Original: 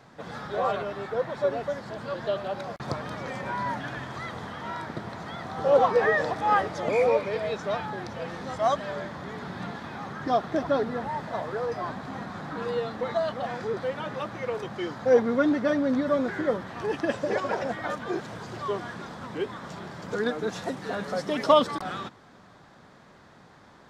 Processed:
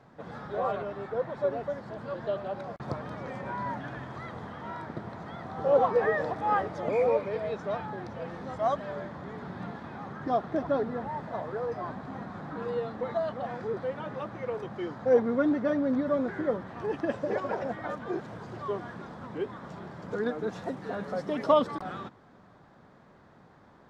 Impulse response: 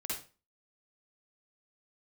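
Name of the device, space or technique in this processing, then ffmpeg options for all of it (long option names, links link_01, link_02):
through cloth: -af "highshelf=frequency=2200:gain=-12,volume=-2dB"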